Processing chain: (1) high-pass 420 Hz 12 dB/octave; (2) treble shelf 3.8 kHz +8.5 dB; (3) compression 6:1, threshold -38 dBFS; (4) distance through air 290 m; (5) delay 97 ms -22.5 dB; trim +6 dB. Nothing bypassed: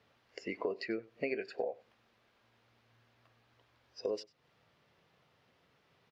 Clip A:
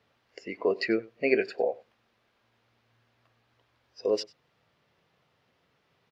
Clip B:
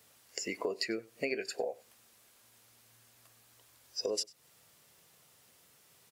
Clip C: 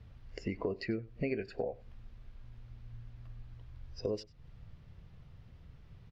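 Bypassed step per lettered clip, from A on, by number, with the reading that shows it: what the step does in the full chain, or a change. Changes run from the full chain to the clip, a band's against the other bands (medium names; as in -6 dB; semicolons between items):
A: 3, mean gain reduction 7.5 dB; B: 4, 4 kHz band +11.0 dB; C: 1, 125 Hz band +17.5 dB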